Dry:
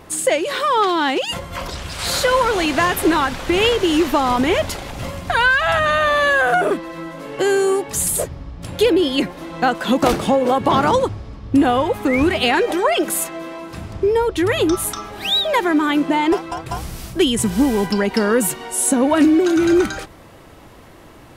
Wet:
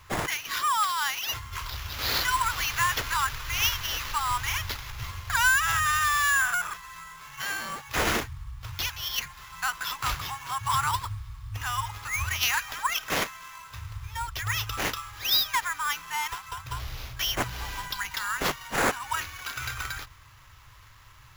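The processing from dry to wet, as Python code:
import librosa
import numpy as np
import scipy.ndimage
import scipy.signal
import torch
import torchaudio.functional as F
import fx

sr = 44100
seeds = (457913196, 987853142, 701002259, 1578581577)

y = scipy.signal.sosfilt(scipy.signal.ellip(3, 1.0, 40, [120.0, 1000.0], 'bandstop', fs=sr, output='sos'), x)
y = fx.peak_eq(y, sr, hz=460.0, db=-13.0, octaves=0.96)
y = fx.sample_hold(y, sr, seeds[0], rate_hz=8700.0, jitter_pct=0)
y = y * librosa.db_to_amplitude(-4.5)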